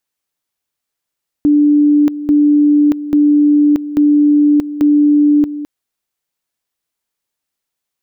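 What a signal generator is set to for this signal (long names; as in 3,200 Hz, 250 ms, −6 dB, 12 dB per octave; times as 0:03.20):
tone at two levels in turn 294 Hz −6.5 dBFS, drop 13.5 dB, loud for 0.63 s, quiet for 0.21 s, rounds 5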